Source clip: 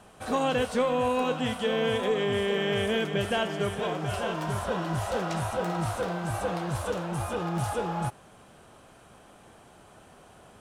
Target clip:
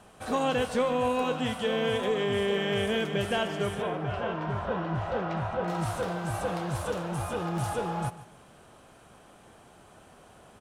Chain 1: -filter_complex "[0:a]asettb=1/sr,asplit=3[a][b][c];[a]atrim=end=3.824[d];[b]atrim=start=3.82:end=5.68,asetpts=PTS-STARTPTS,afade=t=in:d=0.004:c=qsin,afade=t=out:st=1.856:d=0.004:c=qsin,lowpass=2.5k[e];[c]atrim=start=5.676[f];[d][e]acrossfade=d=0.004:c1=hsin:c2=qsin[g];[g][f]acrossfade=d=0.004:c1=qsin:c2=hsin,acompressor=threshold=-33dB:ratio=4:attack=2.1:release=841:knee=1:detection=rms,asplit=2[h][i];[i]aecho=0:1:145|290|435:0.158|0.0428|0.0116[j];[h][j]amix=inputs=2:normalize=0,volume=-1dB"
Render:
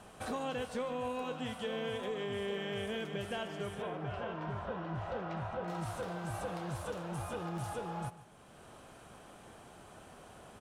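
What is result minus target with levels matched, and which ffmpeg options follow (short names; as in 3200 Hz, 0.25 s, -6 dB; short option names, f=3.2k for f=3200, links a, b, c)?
compressor: peak gain reduction +11.5 dB
-filter_complex "[0:a]asettb=1/sr,asplit=3[a][b][c];[a]atrim=end=3.824[d];[b]atrim=start=3.82:end=5.68,asetpts=PTS-STARTPTS,afade=t=in:d=0.004:c=qsin,afade=t=out:st=1.856:d=0.004:c=qsin,lowpass=2.5k[e];[c]atrim=start=5.676[f];[d][e]acrossfade=d=0.004:c1=hsin:c2=qsin[g];[g][f]acrossfade=d=0.004:c1=qsin:c2=hsin,asplit=2[h][i];[i]aecho=0:1:145|290|435:0.158|0.0428|0.0116[j];[h][j]amix=inputs=2:normalize=0,volume=-1dB"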